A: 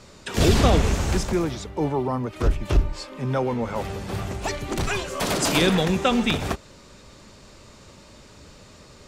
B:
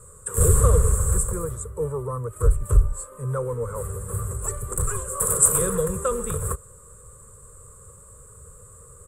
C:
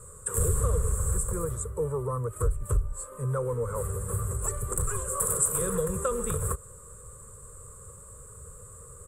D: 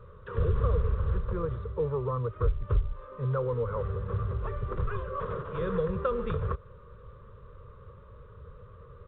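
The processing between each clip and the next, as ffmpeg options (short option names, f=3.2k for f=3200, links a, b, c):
-af "firequalizer=gain_entry='entry(110,0);entry(280,-26);entry(470,2);entry(740,-28);entry(1100,-1);entry(2200,-26);entry(5500,-30);entry(7900,14);entry(13000,6)':delay=0.05:min_phase=1,volume=3dB"
-af "acompressor=threshold=-26dB:ratio=2.5"
-ar 8000 -c:a pcm_mulaw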